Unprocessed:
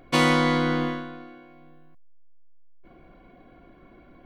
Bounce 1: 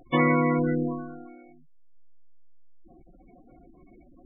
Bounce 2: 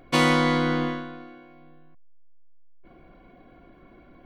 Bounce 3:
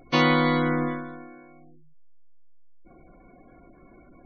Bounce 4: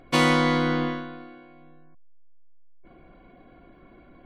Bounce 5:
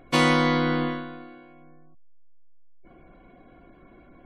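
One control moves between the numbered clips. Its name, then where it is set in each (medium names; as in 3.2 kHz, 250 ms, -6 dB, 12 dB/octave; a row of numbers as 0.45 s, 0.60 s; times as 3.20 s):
spectral gate, under each frame's peak: -10 dB, -60 dB, -20 dB, -45 dB, -35 dB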